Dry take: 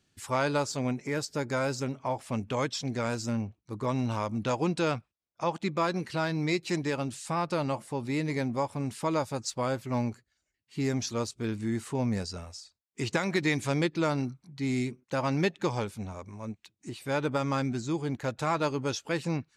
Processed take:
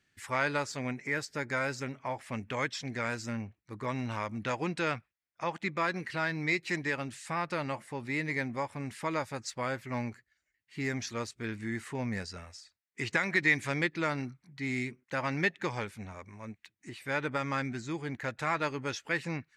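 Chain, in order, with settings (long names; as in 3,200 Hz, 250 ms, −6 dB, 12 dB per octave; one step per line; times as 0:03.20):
parametric band 1,900 Hz +13.5 dB 0.88 octaves
level −6 dB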